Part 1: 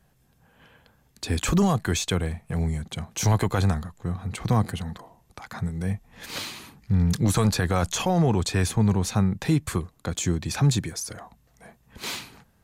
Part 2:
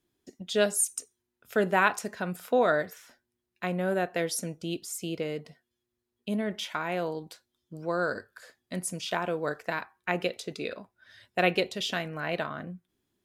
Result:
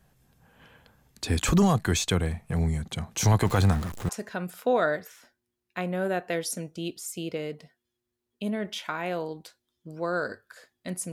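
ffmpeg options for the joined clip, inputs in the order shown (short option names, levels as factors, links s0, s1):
-filter_complex "[0:a]asettb=1/sr,asplit=3[s0][s1][s2];[s0]atrim=end=3.454[s3];[s1]atrim=start=3.45:end=4.09,asetpts=PTS-STARTPTS,afade=t=in:d=0.004:c=qsin,afade=t=out:st=0.636:d=0.004:c=qsin,aeval=exprs='val(0)+0.5*0.0211*sgn(val(0))':c=same[s4];[s2]atrim=start=4.086[s5];[s3][s4]acrossfade=d=0.004:c1=hsin:c2=qsin[s6];[s6][s5]acrossfade=d=0.004:c1=qsin:c2=hsin,apad=whole_dur=11.12,atrim=end=11.12,atrim=end=4.092[s7];[1:a]atrim=start=1.948:end=8.98[s8];[s7][s8]acrossfade=d=0.004:c1=hsin:c2=hsin"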